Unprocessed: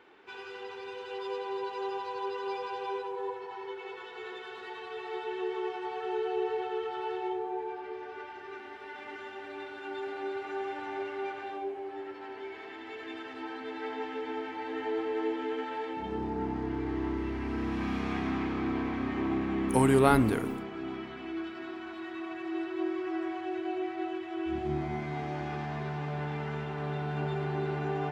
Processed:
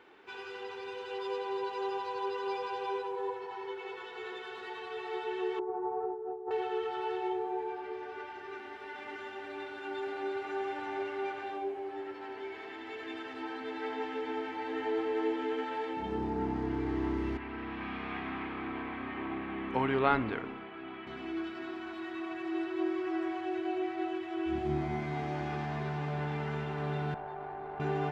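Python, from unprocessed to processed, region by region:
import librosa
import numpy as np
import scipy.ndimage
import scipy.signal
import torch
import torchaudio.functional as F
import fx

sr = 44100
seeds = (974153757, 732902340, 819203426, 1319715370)

y = fx.chain(x, sr, fx.lowpass(hz=1000.0, slope=24),
    fx.over_compress(threshold_db=-35.0, ratio=-0.5), at=(5.59, 6.51))
y = fx.chain(y, sr, fx.lowpass(hz=3300.0, slope=24),
    fx.low_shelf(hz=490.0, db=-11.5), at=(17.37, 21.07))
y = fx.chain(y, sr, fx.bandpass_q(hz=790.0, q=2.1),
    fx.tube_stage(drive_db=32.0, bias=0.6),
    fx.env_flatten(amount_pct=100), at=(27.14, 27.8))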